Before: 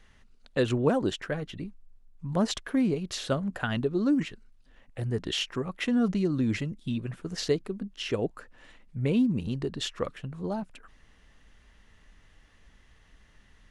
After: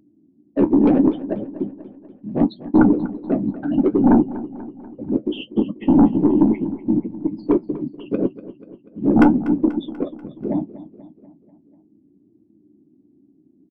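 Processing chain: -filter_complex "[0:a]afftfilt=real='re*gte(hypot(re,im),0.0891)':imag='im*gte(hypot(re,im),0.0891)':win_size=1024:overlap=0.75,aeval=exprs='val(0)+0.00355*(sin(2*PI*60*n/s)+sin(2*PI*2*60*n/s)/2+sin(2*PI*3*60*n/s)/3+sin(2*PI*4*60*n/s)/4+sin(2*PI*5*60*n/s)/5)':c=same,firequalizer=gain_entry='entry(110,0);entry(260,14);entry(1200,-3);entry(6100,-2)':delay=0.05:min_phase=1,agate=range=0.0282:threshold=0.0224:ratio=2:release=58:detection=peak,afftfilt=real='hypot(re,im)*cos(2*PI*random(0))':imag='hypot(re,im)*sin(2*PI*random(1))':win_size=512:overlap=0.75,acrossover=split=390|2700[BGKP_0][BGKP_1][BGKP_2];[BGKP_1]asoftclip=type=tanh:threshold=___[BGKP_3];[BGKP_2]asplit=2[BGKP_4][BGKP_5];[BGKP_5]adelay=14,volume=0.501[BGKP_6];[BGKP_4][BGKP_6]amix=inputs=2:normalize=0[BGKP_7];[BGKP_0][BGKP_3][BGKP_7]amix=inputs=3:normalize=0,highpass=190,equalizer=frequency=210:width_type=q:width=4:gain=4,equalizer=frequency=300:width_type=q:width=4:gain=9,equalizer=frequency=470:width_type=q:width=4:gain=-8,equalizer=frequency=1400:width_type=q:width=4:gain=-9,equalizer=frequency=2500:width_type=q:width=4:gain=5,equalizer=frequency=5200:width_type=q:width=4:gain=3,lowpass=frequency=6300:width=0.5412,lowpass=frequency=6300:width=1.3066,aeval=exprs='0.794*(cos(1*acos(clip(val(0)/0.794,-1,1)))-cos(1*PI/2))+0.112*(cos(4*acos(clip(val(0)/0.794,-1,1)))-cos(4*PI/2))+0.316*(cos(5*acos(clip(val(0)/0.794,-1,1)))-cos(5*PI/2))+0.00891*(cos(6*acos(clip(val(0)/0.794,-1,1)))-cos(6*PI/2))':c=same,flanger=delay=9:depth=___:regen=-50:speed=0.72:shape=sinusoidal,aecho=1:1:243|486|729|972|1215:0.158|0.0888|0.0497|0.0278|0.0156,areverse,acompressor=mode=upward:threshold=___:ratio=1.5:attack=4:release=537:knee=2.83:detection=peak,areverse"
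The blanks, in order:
0.0794, 5.4, 0.00562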